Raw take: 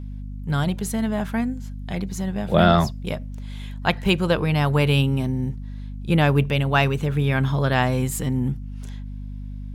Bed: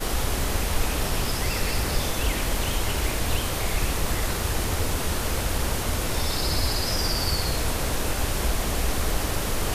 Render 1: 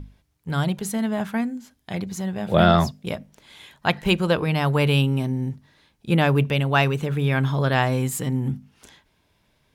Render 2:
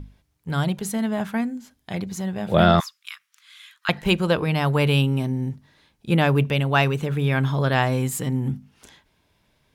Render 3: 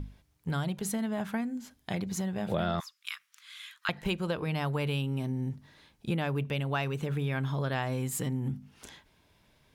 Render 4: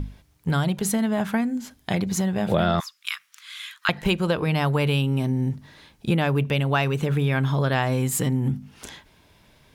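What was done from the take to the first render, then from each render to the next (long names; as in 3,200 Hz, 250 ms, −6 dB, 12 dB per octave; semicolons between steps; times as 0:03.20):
mains-hum notches 50/100/150/200/250 Hz
0:02.80–0:03.89: elliptic high-pass filter 1,200 Hz, stop band 50 dB
downward compressor 4 to 1, threshold −30 dBFS, peak gain reduction 15.5 dB
level +9 dB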